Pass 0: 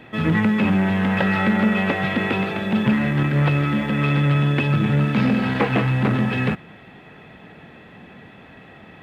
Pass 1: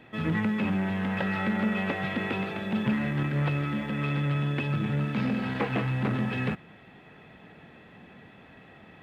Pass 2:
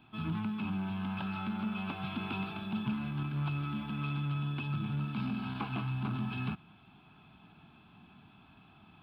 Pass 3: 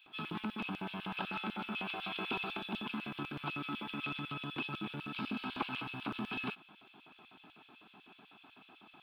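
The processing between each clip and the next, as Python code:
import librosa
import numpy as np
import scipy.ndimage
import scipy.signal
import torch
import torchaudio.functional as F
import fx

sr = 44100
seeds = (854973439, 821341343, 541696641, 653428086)

y1 = fx.rider(x, sr, range_db=10, speed_s=2.0)
y1 = F.gain(torch.from_numpy(y1), -9.0).numpy()
y2 = fx.rider(y1, sr, range_db=10, speed_s=0.5)
y2 = fx.fixed_phaser(y2, sr, hz=1900.0, stages=6)
y2 = F.gain(torch.from_numpy(y2), -5.0).numpy()
y3 = fx.filter_lfo_highpass(y2, sr, shape='square', hz=8.0, low_hz=340.0, high_hz=2800.0, q=1.4)
y3 = F.gain(torch.from_numpy(y3), 2.5).numpy()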